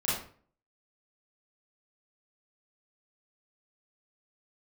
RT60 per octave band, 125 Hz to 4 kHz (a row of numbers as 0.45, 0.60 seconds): 0.60, 0.55, 0.50, 0.45, 0.40, 0.35 seconds